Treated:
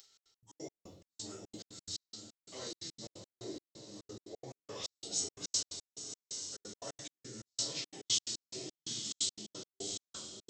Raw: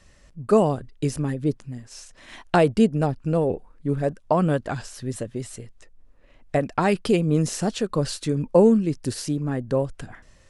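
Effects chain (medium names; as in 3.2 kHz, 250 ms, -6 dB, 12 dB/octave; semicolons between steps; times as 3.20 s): frequency-domain pitch shifter -5.5 st; high-order bell 1.6 kHz -8 dB; gate -45 dBFS, range -26 dB; reverse; compression 12:1, threshold -34 dBFS, peak gain reduction 21.5 dB; reverse; simulated room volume 87 m³, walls mixed, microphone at 2.5 m; upward compressor, threshold -34 dBFS; differentiator; on a send: echo that smears into a reverb 800 ms, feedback 44%, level -7 dB; on the sum: trance gate "xx.x.x.x..xx..x" 176 bpm -60 dB; trim +6.5 dB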